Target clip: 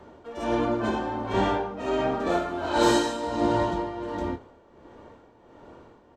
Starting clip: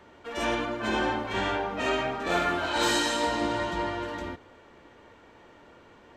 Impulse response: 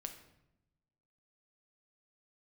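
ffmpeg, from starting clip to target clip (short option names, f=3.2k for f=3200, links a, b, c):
-filter_complex "[0:a]tremolo=f=1.4:d=0.65,acrossover=split=1100[a][b];[a]crystalizer=i=6.5:c=0[c];[c][b]amix=inputs=2:normalize=0,lowpass=f=3.7k:p=1,equalizer=f=2.2k:t=o:w=1.8:g=-10.5,asplit=2[d][e];[e]adelay=26,volume=-9dB[f];[d][f]amix=inputs=2:normalize=0,volume=7dB"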